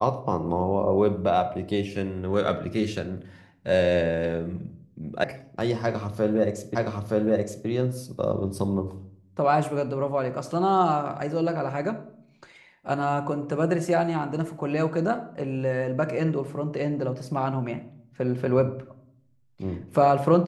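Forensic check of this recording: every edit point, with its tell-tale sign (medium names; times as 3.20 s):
5.24 s: sound stops dead
6.75 s: repeat of the last 0.92 s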